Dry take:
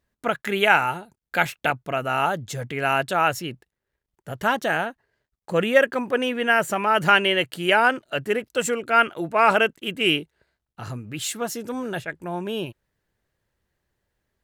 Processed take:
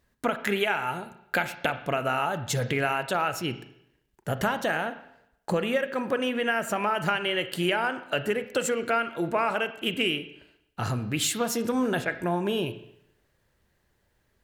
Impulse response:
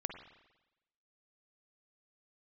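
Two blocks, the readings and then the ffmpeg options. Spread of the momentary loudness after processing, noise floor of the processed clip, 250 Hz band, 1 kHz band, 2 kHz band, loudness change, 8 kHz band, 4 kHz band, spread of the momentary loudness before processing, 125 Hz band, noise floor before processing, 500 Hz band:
8 LU, -71 dBFS, -1.0 dB, -6.5 dB, -6.5 dB, -5.5 dB, 0.0 dB, -4.5 dB, 13 LU, +0.5 dB, -85 dBFS, -4.0 dB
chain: -filter_complex "[0:a]acompressor=threshold=0.0355:ratio=12,asplit=2[s0][s1];[1:a]atrim=start_sample=2205,asetrate=57330,aresample=44100[s2];[s1][s2]afir=irnorm=-1:irlink=0,volume=1.58[s3];[s0][s3]amix=inputs=2:normalize=0"

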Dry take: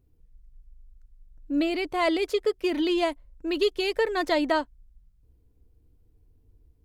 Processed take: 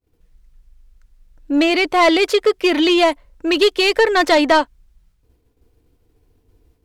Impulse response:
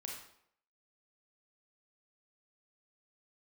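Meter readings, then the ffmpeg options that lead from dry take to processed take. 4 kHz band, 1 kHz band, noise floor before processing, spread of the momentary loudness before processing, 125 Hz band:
+13.5 dB, +12.5 dB, -63 dBFS, 6 LU, no reading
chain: -filter_complex "[0:a]agate=range=0.0224:threshold=0.00158:ratio=3:detection=peak,asplit=2[s0][s1];[s1]highpass=f=720:p=1,volume=5.62,asoftclip=type=tanh:threshold=0.251[s2];[s0][s2]amix=inputs=2:normalize=0,lowpass=f=5700:p=1,volume=0.501,volume=2.37"

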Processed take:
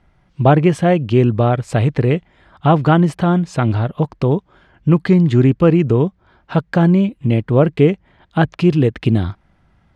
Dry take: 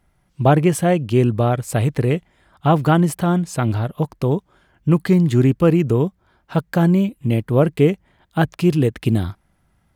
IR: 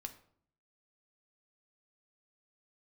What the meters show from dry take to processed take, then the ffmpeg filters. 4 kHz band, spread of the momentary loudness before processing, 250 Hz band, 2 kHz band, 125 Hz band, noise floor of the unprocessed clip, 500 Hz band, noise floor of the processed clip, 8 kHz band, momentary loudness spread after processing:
+2.0 dB, 9 LU, +3.0 dB, +2.5 dB, +3.0 dB, -63 dBFS, +2.5 dB, -58 dBFS, no reading, 8 LU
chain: -filter_complex "[0:a]lowpass=4300,asplit=2[s0][s1];[s1]acompressor=threshold=0.0398:ratio=6,volume=0.794[s2];[s0][s2]amix=inputs=2:normalize=0,volume=1.19"

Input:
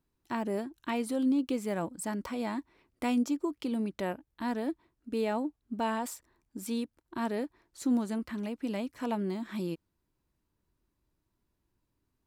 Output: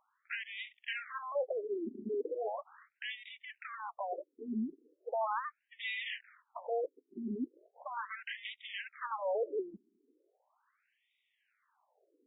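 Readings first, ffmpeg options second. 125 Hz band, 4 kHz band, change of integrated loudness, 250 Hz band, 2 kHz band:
under -10 dB, +1.0 dB, -5.5 dB, -13.0 dB, +2.0 dB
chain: -af "aeval=exprs='abs(val(0))':c=same,areverse,acompressor=threshold=0.0126:ratio=10,areverse,asoftclip=type=tanh:threshold=0.0188,afftfilt=real='re*between(b*sr/1024,290*pow(2700/290,0.5+0.5*sin(2*PI*0.38*pts/sr))/1.41,290*pow(2700/290,0.5+0.5*sin(2*PI*0.38*pts/sr))*1.41)':imag='im*between(b*sr/1024,290*pow(2700/290,0.5+0.5*sin(2*PI*0.38*pts/sr))/1.41,290*pow(2700/290,0.5+0.5*sin(2*PI*0.38*pts/sr))*1.41)':win_size=1024:overlap=0.75,volume=7.94"

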